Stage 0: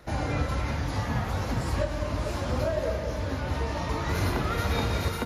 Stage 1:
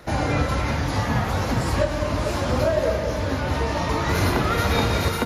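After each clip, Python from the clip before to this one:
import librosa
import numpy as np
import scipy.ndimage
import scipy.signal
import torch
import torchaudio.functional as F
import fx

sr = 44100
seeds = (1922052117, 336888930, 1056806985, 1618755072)

y = fx.low_shelf(x, sr, hz=67.0, db=-7.5)
y = y * librosa.db_to_amplitude(7.5)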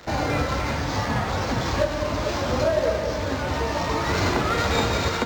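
y = fx.bass_treble(x, sr, bass_db=-4, treble_db=7)
y = fx.dmg_crackle(y, sr, seeds[0], per_s=320.0, level_db=-30.0)
y = np.interp(np.arange(len(y)), np.arange(len(y))[::4], y[::4])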